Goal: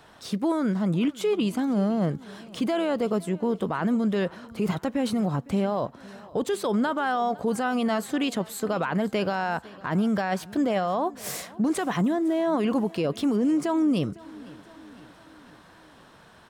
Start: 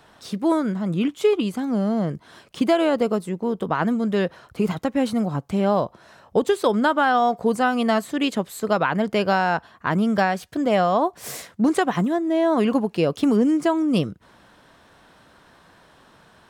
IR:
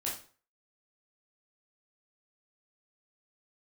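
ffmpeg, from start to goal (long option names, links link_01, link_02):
-af "alimiter=limit=-17.5dB:level=0:latency=1:release=15,aecho=1:1:507|1014|1521|2028:0.0841|0.0471|0.0264|0.0148"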